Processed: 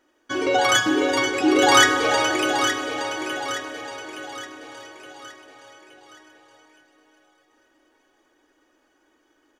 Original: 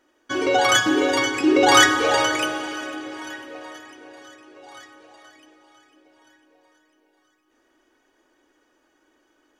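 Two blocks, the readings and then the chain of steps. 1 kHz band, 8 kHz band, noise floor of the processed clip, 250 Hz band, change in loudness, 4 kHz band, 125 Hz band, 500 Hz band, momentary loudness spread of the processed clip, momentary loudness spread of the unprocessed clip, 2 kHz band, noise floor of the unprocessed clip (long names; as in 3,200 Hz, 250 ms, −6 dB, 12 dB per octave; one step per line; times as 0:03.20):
0.0 dB, −0.5 dB, −66 dBFS, −1.0 dB, −1.0 dB, 0.0 dB, −0.5 dB, −0.5 dB, 20 LU, 21 LU, 0.0 dB, −66 dBFS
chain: repeating echo 869 ms, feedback 44%, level −8 dB
level −1 dB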